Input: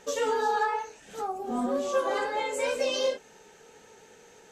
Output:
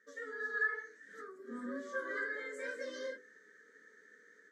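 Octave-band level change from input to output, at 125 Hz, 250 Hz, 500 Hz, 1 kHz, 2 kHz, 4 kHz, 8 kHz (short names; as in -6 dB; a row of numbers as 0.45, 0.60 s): n/a, -12.0 dB, -15.5 dB, -20.5 dB, -1.0 dB, -20.5 dB, -20.0 dB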